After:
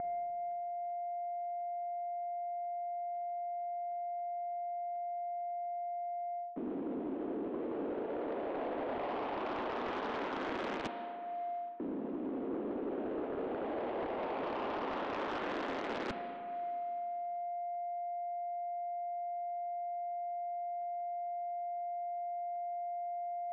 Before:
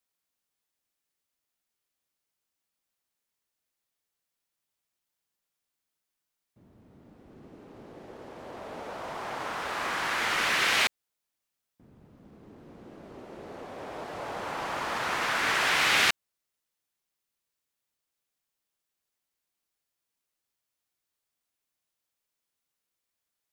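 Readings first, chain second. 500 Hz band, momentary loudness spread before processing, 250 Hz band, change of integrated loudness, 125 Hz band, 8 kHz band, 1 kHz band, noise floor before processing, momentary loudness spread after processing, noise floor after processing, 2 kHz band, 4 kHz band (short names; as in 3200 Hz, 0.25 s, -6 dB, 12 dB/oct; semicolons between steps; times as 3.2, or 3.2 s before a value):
+6.0 dB, 21 LU, +6.0 dB, -11.5 dB, -5.5 dB, under -25 dB, 0.0 dB, -85 dBFS, 2 LU, -41 dBFS, -16.5 dB, -20.0 dB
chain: switching dead time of 0.25 ms; mistuned SSB +60 Hz 180–3300 Hz; whine 700 Hz -69 dBFS; in parallel at +1.5 dB: upward compressor, threshold -48 dBFS; on the sum: tilt shelf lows +10 dB, about 1100 Hz; reverse; compressor 6:1, threshold -50 dBFS, peak gain reduction 23.5 dB; reverse; Schroeder reverb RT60 2.4 s, combs from 33 ms, DRR 8.5 dB; low-pass opened by the level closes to 800 Hz, open at -47.5 dBFS; sine folder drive 9 dB, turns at -34.5 dBFS; gain +2 dB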